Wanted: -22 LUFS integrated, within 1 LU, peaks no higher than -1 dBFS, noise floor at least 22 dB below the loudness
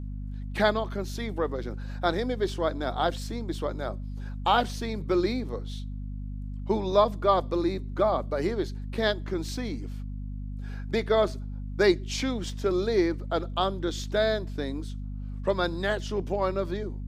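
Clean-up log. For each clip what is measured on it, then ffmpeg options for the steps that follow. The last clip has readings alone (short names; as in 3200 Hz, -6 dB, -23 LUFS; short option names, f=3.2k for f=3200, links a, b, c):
hum 50 Hz; harmonics up to 250 Hz; hum level -33 dBFS; loudness -29.0 LUFS; peak -9.0 dBFS; loudness target -22.0 LUFS
-> -af "bandreject=f=50:t=h:w=6,bandreject=f=100:t=h:w=6,bandreject=f=150:t=h:w=6,bandreject=f=200:t=h:w=6,bandreject=f=250:t=h:w=6"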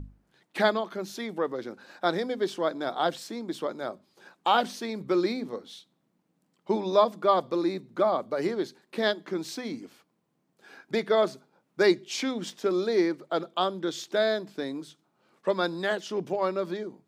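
hum none; loudness -28.5 LUFS; peak -9.5 dBFS; loudness target -22.0 LUFS
-> -af "volume=6.5dB"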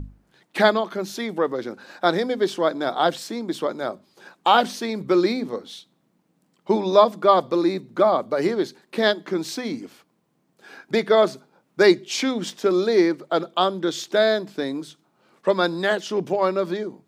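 loudness -22.0 LUFS; peak -3.0 dBFS; noise floor -68 dBFS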